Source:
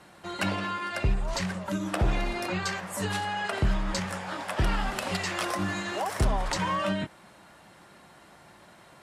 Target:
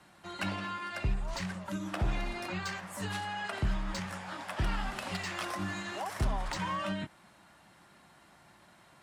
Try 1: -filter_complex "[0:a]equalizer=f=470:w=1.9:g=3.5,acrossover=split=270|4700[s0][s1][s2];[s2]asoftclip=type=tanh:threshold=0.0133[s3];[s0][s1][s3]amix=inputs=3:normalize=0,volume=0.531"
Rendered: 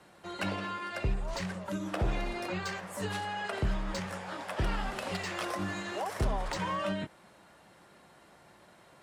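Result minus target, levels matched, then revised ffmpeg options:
500 Hz band +4.0 dB
-filter_complex "[0:a]equalizer=f=470:w=1.9:g=-5.5,acrossover=split=270|4700[s0][s1][s2];[s2]asoftclip=type=tanh:threshold=0.0133[s3];[s0][s1][s3]amix=inputs=3:normalize=0,volume=0.531"

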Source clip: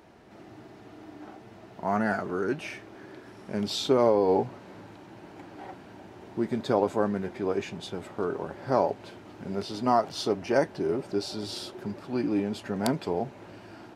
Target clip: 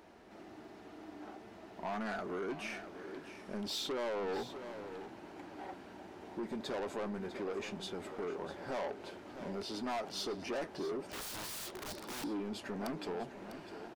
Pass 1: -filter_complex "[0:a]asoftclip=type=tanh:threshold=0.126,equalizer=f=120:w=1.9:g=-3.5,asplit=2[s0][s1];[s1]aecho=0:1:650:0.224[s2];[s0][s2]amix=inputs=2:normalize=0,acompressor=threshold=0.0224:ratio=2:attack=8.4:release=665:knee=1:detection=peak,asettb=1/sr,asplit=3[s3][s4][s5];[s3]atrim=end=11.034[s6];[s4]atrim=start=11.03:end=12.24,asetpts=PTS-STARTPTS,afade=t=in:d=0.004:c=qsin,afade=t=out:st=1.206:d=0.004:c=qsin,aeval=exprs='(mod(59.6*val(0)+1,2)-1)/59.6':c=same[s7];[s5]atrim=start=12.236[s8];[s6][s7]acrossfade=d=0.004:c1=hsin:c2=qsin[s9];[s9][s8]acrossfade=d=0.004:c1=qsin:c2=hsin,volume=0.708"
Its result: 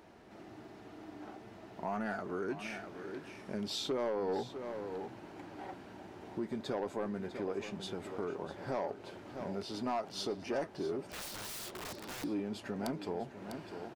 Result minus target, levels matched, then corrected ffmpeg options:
saturation: distortion -8 dB; 125 Hz band +2.5 dB
-filter_complex "[0:a]asoftclip=type=tanh:threshold=0.0376,equalizer=f=120:w=1.9:g=-12,asplit=2[s0][s1];[s1]aecho=0:1:650:0.224[s2];[s0][s2]amix=inputs=2:normalize=0,acompressor=threshold=0.0224:ratio=2:attack=8.4:release=665:knee=1:detection=peak,asettb=1/sr,asplit=3[s3][s4][s5];[s3]atrim=end=11.034[s6];[s4]atrim=start=11.03:end=12.24,asetpts=PTS-STARTPTS,afade=t=in:d=0.004:c=qsin,afade=t=out:st=1.206:d=0.004:c=qsin,aeval=exprs='(mod(59.6*val(0)+1,2)-1)/59.6':c=same[s7];[s5]atrim=start=12.236[s8];[s6][s7]acrossfade=d=0.004:c1=hsin:c2=qsin[s9];[s9][s8]acrossfade=d=0.004:c1=qsin:c2=hsin,volume=0.708"

